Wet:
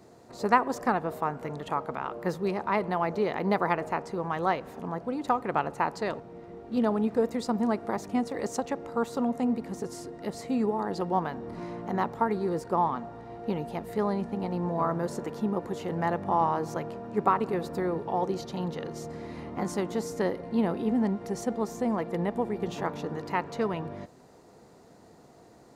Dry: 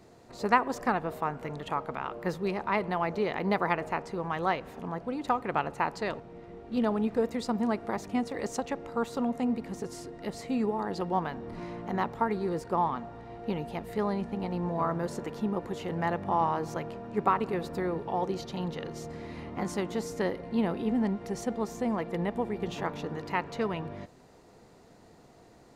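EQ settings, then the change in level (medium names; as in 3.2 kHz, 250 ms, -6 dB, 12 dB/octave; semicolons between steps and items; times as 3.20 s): high-pass 99 Hz 6 dB/octave; peaking EQ 2.7 kHz -5 dB 1.4 oct; +2.5 dB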